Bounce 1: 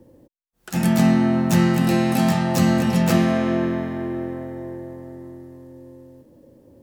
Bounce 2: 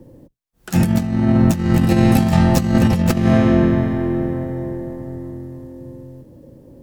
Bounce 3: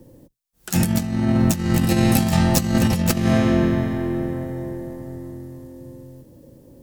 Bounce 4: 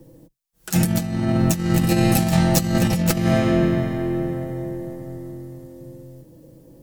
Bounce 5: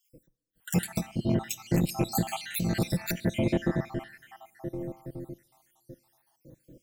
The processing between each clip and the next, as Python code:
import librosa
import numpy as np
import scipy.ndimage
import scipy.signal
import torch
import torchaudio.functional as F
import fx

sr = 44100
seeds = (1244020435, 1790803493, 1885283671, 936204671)

y1 = fx.octave_divider(x, sr, octaves=1, level_db=-5.0)
y1 = fx.low_shelf(y1, sr, hz=280.0, db=6.0)
y1 = fx.over_compress(y1, sr, threshold_db=-15.0, ratio=-0.5)
y1 = y1 * librosa.db_to_amplitude(1.5)
y2 = fx.high_shelf(y1, sr, hz=3300.0, db=11.0)
y2 = y2 * librosa.db_to_amplitude(-4.0)
y3 = y2 + 0.5 * np.pad(y2, (int(6.2 * sr / 1000.0), 0))[:len(y2)]
y3 = y3 * librosa.db_to_amplitude(-1.0)
y4 = fx.spec_dropout(y3, sr, seeds[0], share_pct=62)
y4 = fx.rev_double_slope(y4, sr, seeds[1], early_s=0.43, late_s=1.8, knee_db=-16, drr_db=19.0)
y4 = fx.transformer_sat(y4, sr, knee_hz=310.0)
y4 = y4 * librosa.db_to_amplitude(-4.0)